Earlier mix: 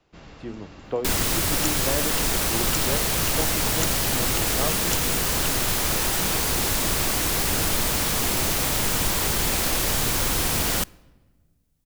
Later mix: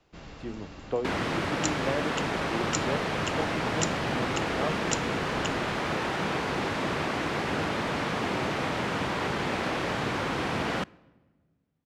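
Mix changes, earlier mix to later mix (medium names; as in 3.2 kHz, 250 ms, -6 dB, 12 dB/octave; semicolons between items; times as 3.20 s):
speech: send -11.0 dB; second sound: add band-pass 140–2200 Hz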